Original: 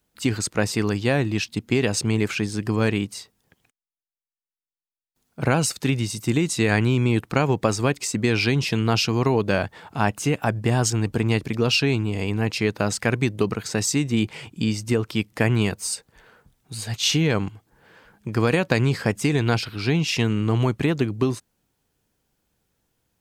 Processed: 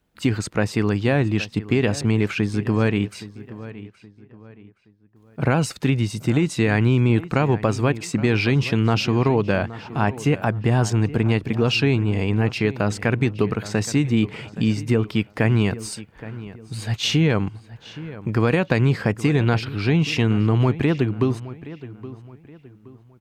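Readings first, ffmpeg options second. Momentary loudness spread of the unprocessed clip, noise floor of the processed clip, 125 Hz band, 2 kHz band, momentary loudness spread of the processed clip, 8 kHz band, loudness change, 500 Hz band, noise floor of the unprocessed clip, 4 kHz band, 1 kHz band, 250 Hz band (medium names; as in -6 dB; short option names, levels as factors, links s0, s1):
6 LU, -52 dBFS, +3.5 dB, 0.0 dB, 16 LU, -7.0 dB, +1.5 dB, +1.0 dB, under -85 dBFS, -2.0 dB, +0.5 dB, +2.5 dB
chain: -filter_complex "[0:a]bass=f=250:g=2,treble=f=4000:g=-10,asplit=2[s0][s1];[s1]alimiter=limit=0.188:level=0:latency=1:release=282,volume=1.19[s2];[s0][s2]amix=inputs=2:normalize=0,asplit=2[s3][s4];[s4]adelay=821,lowpass=f=3100:p=1,volume=0.158,asplit=2[s5][s6];[s6]adelay=821,lowpass=f=3100:p=1,volume=0.36,asplit=2[s7][s8];[s8]adelay=821,lowpass=f=3100:p=1,volume=0.36[s9];[s3][s5][s7][s9]amix=inputs=4:normalize=0,volume=0.668"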